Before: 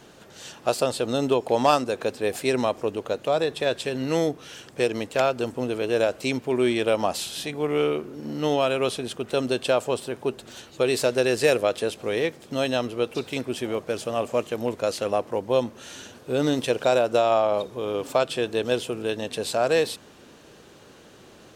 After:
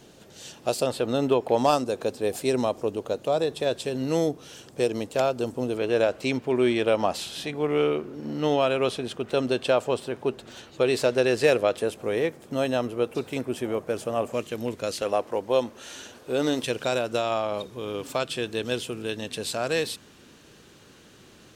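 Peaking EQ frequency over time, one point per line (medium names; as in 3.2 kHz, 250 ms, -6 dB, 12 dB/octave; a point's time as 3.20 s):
peaking EQ -7 dB 1.7 oct
1.3 kHz
from 0.87 s 7.1 kHz
from 1.58 s 1.9 kHz
from 5.77 s 12 kHz
from 11.77 s 4.1 kHz
from 14.33 s 780 Hz
from 15.02 s 130 Hz
from 16.63 s 650 Hz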